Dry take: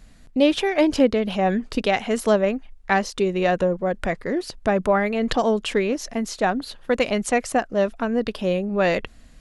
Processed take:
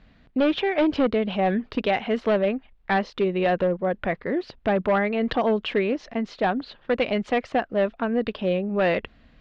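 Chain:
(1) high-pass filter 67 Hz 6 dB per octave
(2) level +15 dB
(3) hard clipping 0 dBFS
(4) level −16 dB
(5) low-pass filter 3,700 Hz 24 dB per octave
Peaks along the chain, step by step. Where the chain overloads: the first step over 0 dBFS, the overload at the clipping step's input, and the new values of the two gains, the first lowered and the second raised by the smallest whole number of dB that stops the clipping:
−5.5, +9.5, 0.0, −16.0, −14.5 dBFS
step 2, 9.5 dB
step 2 +5 dB, step 4 −6 dB

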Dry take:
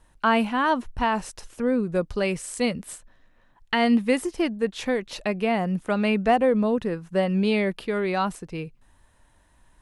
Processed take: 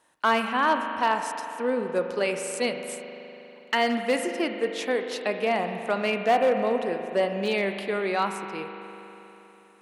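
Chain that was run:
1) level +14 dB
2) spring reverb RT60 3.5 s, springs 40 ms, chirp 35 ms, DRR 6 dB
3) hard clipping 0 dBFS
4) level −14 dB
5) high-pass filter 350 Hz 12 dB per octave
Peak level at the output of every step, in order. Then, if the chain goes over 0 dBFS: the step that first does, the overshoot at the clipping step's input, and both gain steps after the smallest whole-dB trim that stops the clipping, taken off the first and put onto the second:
+5.0, +6.0, 0.0, −14.0, −9.5 dBFS
step 1, 6.0 dB
step 1 +8 dB, step 4 −8 dB

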